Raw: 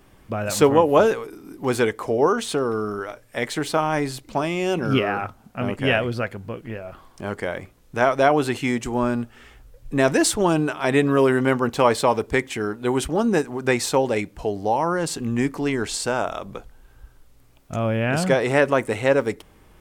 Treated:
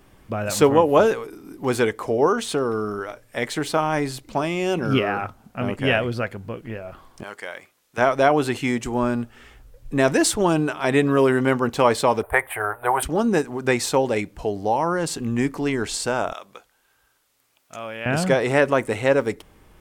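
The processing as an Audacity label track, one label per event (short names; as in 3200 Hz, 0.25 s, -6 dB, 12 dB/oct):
7.230000	7.980000	HPF 1500 Hz 6 dB/oct
12.230000	13.030000	EQ curve 100 Hz 0 dB, 210 Hz -27 dB, 470 Hz -1 dB, 660 Hz +13 dB, 1800 Hz +6 dB, 4200 Hz -14 dB, 6300 Hz -30 dB, 9100 Hz +10 dB, 14000 Hz +14 dB
16.330000	18.060000	HPF 1500 Hz 6 dB/oct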